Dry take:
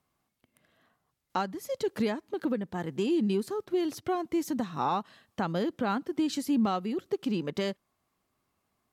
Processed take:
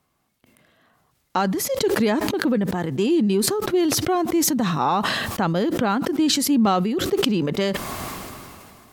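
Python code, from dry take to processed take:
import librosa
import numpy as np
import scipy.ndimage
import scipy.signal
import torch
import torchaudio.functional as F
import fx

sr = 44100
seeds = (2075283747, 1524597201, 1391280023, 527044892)

y = fx.sustainer(x, sr, db_per_s=24.0)
y = y * 10.0 ** (7.5 / 20.0)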